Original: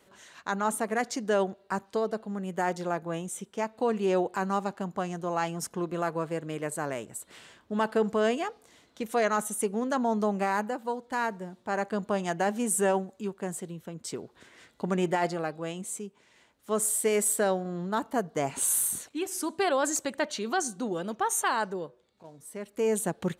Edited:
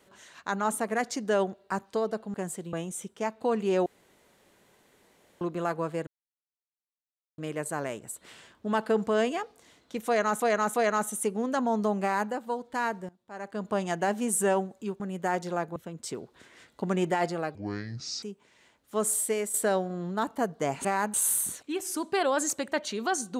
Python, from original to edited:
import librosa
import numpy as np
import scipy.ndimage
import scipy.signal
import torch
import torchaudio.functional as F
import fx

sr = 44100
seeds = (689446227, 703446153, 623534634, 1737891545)

y = fx.edit(x, sr, fx.swap(start_s=2.34, length_s=0.76, other_s=13.38, other_length_s=0.39),
    fx.room_tone_fill(start_s=4.23, length_s=1.55),
    fx.insert_silence(at_s=6.44, length_s=1.31),
    fx.repeat(start_s=9.12, length_s=0.34, count=3),
    fx.duplicate(start_s=10.4, length_s=0.29, to_s=18.6),
    fx.fade_in_from(start_s=11.47, length_s=0.63, curve='qua', floor_db=-18.5),
    fx.speed_span(start_s=15.56, length_s=0.42, speed=0.62),
    fx.fade_out_to(start_s=16.94, length_s=0.35, floor_db=-10.0), tone=tone)